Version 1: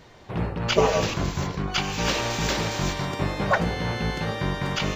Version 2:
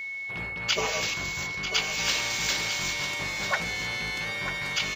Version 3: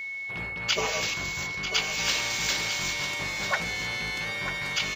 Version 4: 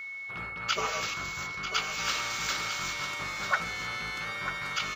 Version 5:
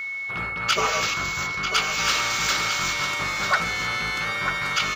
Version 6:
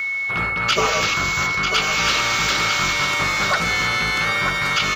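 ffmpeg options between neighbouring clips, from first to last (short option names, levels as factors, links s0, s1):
-af "tiltshelf=f=1300:g=-9,aeval=exprs='val(0)+0.0447*sin(2*PI*2200*n/s)':c=same,aecho=1:1:944:0.335,volume=0.531"
-af anull
-af "equalizer=f=1300:t=o:w=0.35:g=15,volume=0.531"
-af "aeval=exprs='0.224*sin(PI/2*1.78*val(0)/0.224)':c=same"
-filter_complex "[0:a]acrossover=split=4200[s0][s1];[s1]acompressor=threshold=0.0178:ratio=4:attack=1:release=60[s2];[s0][s2]amix=inputs=2:normalize=0,acrossover=split=630|2800[s3][s4][s5];[s4]alimiter=limit=0.0891:level=0:latency=1:release=190[s6];[s3][s6][s5]amix=inputs=3:normalize=0,volume=2.24"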